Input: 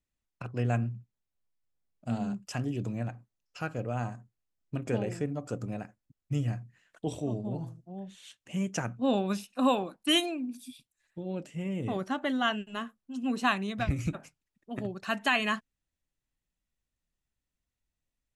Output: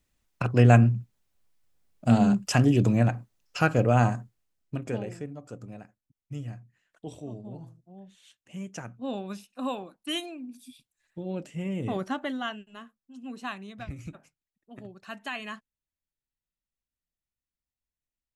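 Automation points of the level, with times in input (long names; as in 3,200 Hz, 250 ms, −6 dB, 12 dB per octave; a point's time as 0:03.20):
0:04.15 +12 dB
0:04.84 0 dB
0:05.37 −6.5 dB
0:10.29 −6.5 dB
0:11.20 +2 dB
0:12.07 +2 dB
0:12.67 −9 dB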